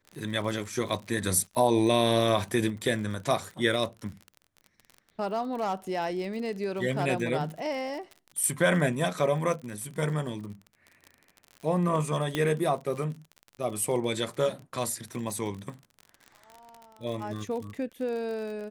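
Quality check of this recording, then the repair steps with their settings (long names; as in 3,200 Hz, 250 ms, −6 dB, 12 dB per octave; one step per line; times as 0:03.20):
surface crackle 46 per second −36 dBFS
0:12.35: click −14 dBFS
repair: click removal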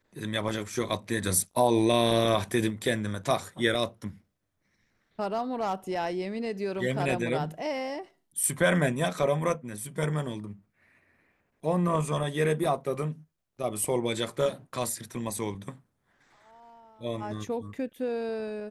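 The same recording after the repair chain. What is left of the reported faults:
none of them is left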